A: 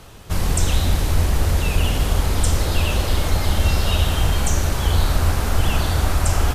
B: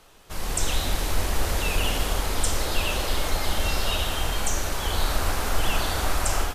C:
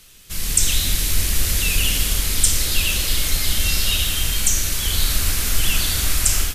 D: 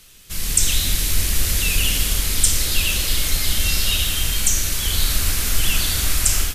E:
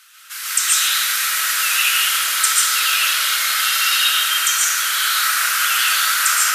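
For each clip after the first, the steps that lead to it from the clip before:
parametric band 97 Hz −13 dB 2.4 octaves; automatic gain control; level −8.5 dB
drawn EQ curve 170 Hz 0 dB, 830 Hz −16 dB, 2,200 Hz +1 dB, 12,000 Hz +9 dB; level +4.5 dB
no processing that can be heard
high-pass with resonance 1,400 Hz, resonance Q 4.7; convolution reverb RT60 1.3 s, pre-delay 100 ms, DRR −6 dB; level −1.5 dB

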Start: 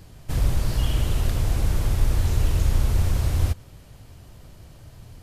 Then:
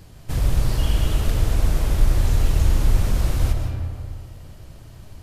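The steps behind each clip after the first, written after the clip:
convolution reverb RT60 2.1 s, pre-delay 100 ms, DRR 3.5 dB
level +1 dB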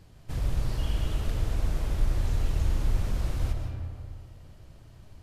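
high-shelf EQ 8,400 Hz −7.5 dB
level −8.5 dB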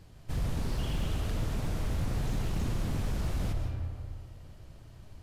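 wave folding −25 dBFS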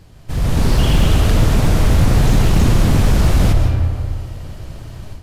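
automatic gain control gain up to 10 dB
level +9 dB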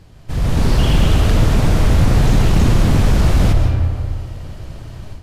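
high-shelf EQ 9,000 Hz −6 dB

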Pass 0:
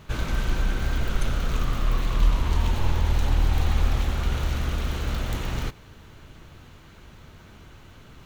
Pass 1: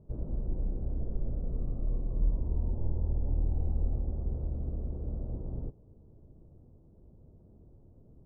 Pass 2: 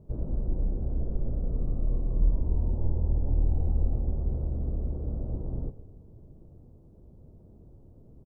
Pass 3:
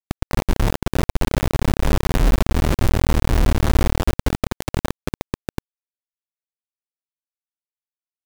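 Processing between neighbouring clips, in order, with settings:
inverse Chebyshev low-pass filter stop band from 2,600 Hz, stop band 70 dB; level −8 dB
echo with shifted repeats 125 ms, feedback 61%, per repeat −35 Hz, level −15.5 dB; level +4 dB
bit reduction 4 bits; level +5.5 dB

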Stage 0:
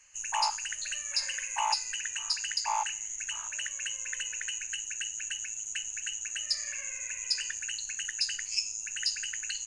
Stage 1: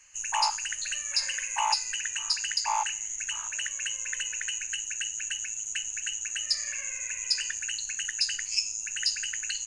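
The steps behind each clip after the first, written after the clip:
parametric band 620 Hz −2.5 dB 0.64 octaves
level +3 dB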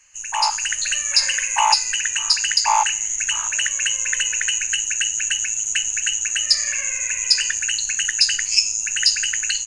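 automatic gain control gain up to 9.5 dB
level +2 dB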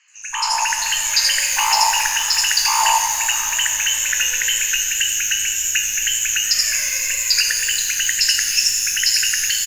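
tape wow and flutter 71 cents
three-band delay without the direct sound mids, highs, lows 80/150 ms, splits 980/5,300 Hz
reverb with rising layers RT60 2.7 s, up +12 semitones, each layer −8 dB, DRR 3.5 dB
level +2.5 dB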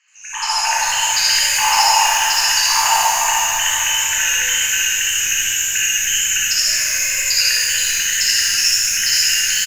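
on a send: ambience of single reflections 58 ms −4 dB, 68 ms −3.5 dB
on the sum: flanger 1.8 Hz, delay 7.7 ms, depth 9.4 ms, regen −84%
dense smooth reverb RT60 2.6 s, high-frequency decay 0.55×, pre-delay 0 ms, DRR −3.5 dB

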